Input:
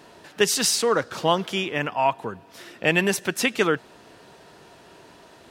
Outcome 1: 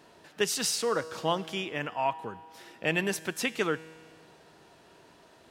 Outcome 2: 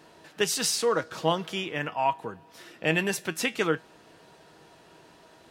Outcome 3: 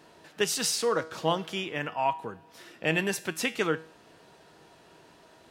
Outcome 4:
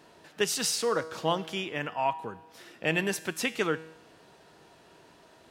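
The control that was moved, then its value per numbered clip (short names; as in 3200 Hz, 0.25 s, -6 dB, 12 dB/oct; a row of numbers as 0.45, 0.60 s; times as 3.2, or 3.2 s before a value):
resonator, decay: 2, 0.17, 0.42, 0.88 s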